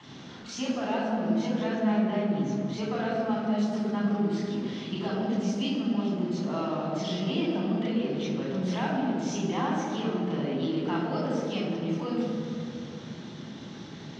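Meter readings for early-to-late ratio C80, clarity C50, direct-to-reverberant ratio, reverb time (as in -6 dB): 1.5 dB, 0.0 dB, -4.5 dB, 2.6 s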